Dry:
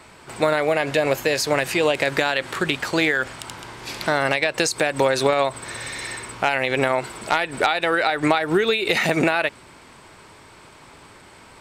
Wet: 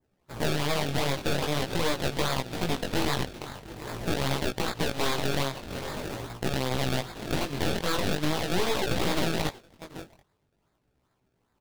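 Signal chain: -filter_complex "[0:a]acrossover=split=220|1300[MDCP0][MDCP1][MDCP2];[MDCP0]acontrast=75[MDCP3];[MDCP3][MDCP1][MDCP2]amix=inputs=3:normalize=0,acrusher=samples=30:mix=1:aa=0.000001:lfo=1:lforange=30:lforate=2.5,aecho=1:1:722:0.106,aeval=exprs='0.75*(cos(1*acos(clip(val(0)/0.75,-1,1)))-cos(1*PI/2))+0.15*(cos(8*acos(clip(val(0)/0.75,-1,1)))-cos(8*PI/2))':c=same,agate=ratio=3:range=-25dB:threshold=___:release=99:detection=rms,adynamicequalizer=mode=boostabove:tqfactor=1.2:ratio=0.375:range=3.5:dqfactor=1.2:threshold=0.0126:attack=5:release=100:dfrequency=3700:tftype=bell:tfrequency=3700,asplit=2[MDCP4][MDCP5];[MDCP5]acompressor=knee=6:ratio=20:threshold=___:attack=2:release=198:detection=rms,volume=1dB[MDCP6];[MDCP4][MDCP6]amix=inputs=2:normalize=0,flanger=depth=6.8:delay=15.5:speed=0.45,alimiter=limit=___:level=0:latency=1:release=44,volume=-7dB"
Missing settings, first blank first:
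-31dB, -23dB, -8dB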